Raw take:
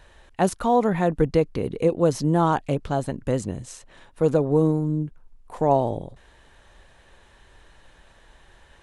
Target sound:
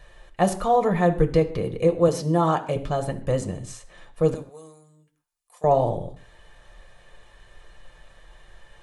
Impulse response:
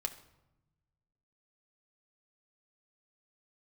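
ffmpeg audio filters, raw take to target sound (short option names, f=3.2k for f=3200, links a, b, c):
-filter_complex "[0:a]asettb=1/sr,asplit=3[a][b][c];[a]atrim=end=2.084[d];[b]atrim=start=2.08:end=2.76,asetpts=PTS-STARTPTS,afade=t=in:d=0.004:c=qsin,afade=t=out:st=0.676:d=0.004:c=qsin,highpass=160[e];[c]atrim=start=2.756[f];[d][e]acrossfade=d=0.004:c1=hsin:c2=qsin[g];[g][f]acrossfade=d=0.004:c1=qsin:c2=hsin,asettb=1/sr,asplit=3[h][i][j];[h]atrim=end=4.344[k];[i]atrim=start=4.34:end=5.64,asetpts=PTS-STARTPTS,afade=t=in:d=0.004:c=qsin,afade=t=out:st=1.296:d=0.004:c=qsin,aderivative[l];[j]atrim=start=5.636[m];[k][l]acrossfade=d=0.004:c1=hsin:c2=qsin[n];[n][m]acrossfade=d=0.004:c1=qsin:c2=hsin[o];[1:a]atrim=start_sample=2205,afade=t=out:st=0.21:d=0.01,atrim=end_sample=9702[p];[o][p]afir=irnorm=-1:irlink=0"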